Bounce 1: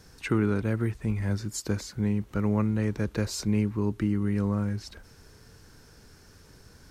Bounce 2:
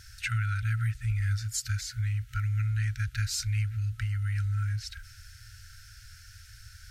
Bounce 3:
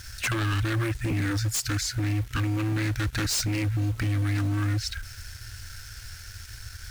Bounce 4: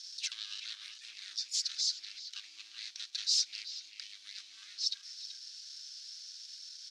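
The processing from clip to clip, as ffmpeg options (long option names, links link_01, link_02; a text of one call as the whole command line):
ffmpeg -i in.wav -filter_complex "[0:a]afftfilt=real='re*(1-between(b*sr/4096,120,1300))':imag='im*(1-between(b*sr/4096,120,1300))':win_size=4096:overlap=0.75,asplit=2[link_01][link_02];[link_02]acompressor=threshold=-39dB:ratio=6,volume=-2dB[link_03];[link_01][link_03]amix=inputs=2:normalize=0" out.wav
ffmpeg -i in.wav -filter_complex "[0:a]asplit=2[link_01][link_02];[link_02]acrusher=bits=7:mix=0:aa=0.000001,volume=-6.5dB[link_03];[link_01][link_03]amix=inputs=2:normalize=0,aeval=exprs='0.0501*(abs(mod(val(0)/0.0501+3,4)-2)-1)':channel_layout=same,volume=5dB" out.wav
ffmpeg -i in.wav -filter_complex "[0:a]asuperpass=centerf=4600:order=4:qfactor=1.9,asplit=2[link_01][link_02];[link_02]adelay=380,highpass=300,lowpass=3400,asoftclip=type=hard:threshold=-29.5dB,volume=-7dB[link_03];[link_01][link_03]amix=inputs=2:normalize=0,volume=1.5dB" out.wav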